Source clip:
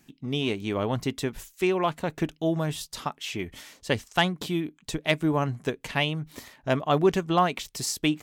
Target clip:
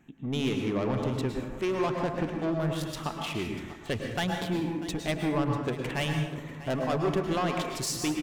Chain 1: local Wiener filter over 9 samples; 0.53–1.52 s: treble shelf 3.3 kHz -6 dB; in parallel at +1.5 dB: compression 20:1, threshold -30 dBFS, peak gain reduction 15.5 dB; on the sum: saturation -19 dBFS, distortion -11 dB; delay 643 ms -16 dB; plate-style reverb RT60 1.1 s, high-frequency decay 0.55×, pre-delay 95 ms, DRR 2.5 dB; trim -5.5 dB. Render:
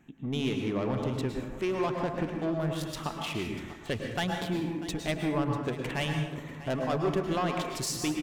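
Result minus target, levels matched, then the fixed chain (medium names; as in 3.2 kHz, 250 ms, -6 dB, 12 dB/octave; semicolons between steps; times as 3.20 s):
compression: peak gain reduction +7.5 dB
local Wiener filter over 9 samples; 0.53–1.52 s: treble shelf 3.3 kHz -6 dB; in parallel at +1.5 dB: compression 20:1, threshold -22 dBFS, peak gain reduction 8 dB; on the sum: saturation -19 dBFS, distortion -9 dB; delay 643 ms -16 dB; plate-style reverb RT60 1.1 s, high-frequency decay 0.55×, pre-delay 95 ms, DRR 2.5 dB; trim -5.5 dB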